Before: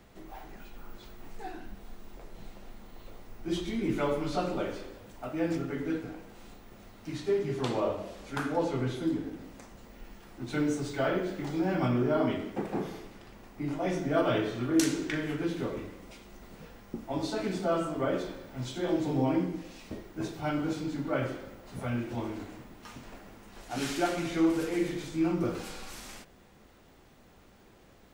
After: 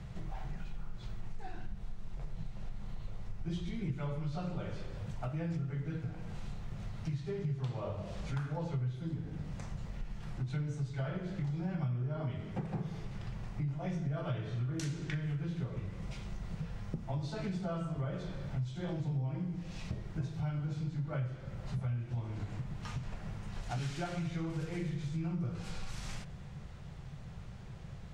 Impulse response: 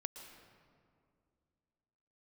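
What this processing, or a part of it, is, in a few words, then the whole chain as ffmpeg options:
jukebox: -af "lowpass=7.6k,lowshelf=f=200:t=q:w=3:g=10.5,acompressor=threshold=-38dB:ratio=5,volume=2.5dB"

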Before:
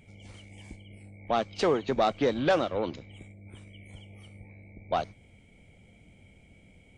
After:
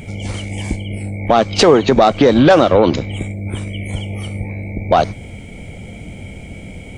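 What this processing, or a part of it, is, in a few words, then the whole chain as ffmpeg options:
mastering chain: -af "equalizer=f=2.8k:t=o:w=1.7:g=-3,acompressor=threshold=-29dB:ratio=3,asoftclip=type=hard:threshold=-21dB,alimiter=level_in=25.5dB:limit=-1dB:release=50:level=0:latency=1,volume=-1dB"

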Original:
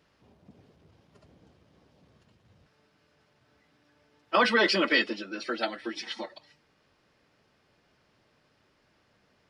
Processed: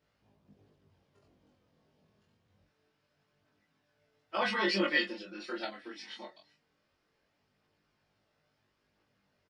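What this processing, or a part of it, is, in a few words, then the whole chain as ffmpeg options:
double-tracked vocal: -filter_complex "[0:a]asplit=2[a][b];[b]adelay=20,volume=-2dB[c];[a][c]amix=inputs=2:normalize=0,flanger=delay=18.5:depth=6.2:speed=0.24,asettb=1/sr,asplit=3[d][e][f];[d]atrim=end=4.414[g];[e]atrim=start=4.41:end=5.65,asetpts=PTS-STARTPTS,afade=t=in:d=0.004:c=qsin,afade=t=out:st=1.236:d=0.004:c=qsin,aecho=1:1:5.6:0.92,atrim=end_sample=54684[h];[f]atrim=start=5.646[i];[g][h]acrossfade=d=0.004:c1=hsin:c2=qsin[j];[j][i]acrossfade=d=0.004:c1=qsin:c2=hsin,volume=-8dB"

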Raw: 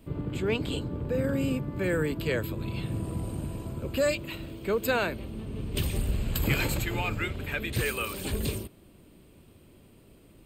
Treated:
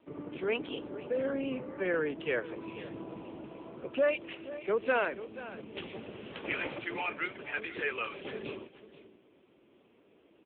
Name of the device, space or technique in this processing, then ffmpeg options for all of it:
satellite phone: -af "highpass=350,lowpass=3.3k,aecho=1:1:483:0.178" -ar 8000 -c:a libopencore_amrnb -b:a 6700

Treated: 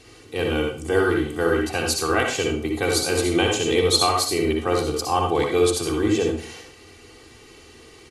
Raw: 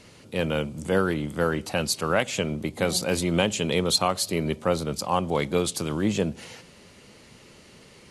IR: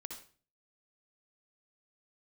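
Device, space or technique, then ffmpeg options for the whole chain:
microphone above a desk: -filter_complex "[0:a]aecho=1:1:2.6:0.84[a];[1:a]atrim=start_sample=2205[b];[a][b]afir=irnorm=-1:irlink=0,volume=5dB"

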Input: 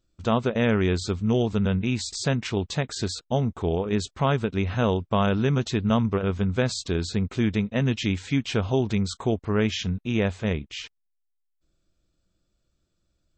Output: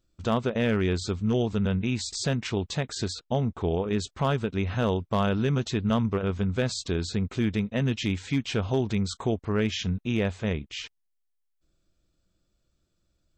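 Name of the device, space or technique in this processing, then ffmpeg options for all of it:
clipper into limiter: -filter_complex "[0:a]asoftclip=type=hard:threshold=-14dB,alimiter=limit=-16.5dB:level=0:latency=1:release=351,asettb=1/sr,asplit=3[a][b][c];[a]atrim=end=3.134[d];[b]atrim=start=3.13:end=3.74,asetpts=PTS-STARTPTS,afade=t=in:d=0.004:c=qsin,afade=t=out:st=0.606:d=0.004:c=qsin,lowpass=5.8k[e];[c]atrim=start=3.736[f];[d][e]acrossfade=d=0.004:c1=hsin:c2=qsin[g];[g][f]acrossfade=d=0.004:c1=qsin:c2=hsin"

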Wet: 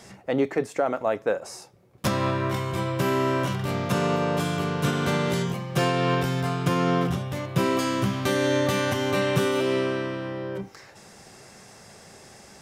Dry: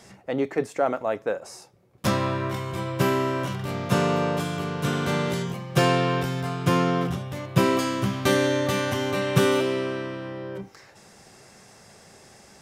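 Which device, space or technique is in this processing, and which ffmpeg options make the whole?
clipper into limiter: -af "asoftclip=type=hard:threshold=-9dB,alimiter=limit=-15.5dB:level=0:latency=1:release=241,volume=2.5dB"

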